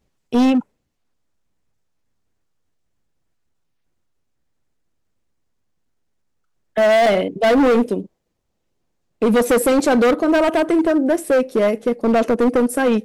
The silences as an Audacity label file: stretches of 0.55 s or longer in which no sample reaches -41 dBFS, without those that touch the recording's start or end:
0.620000	6.760000	silence
8.060000	9.220000	silence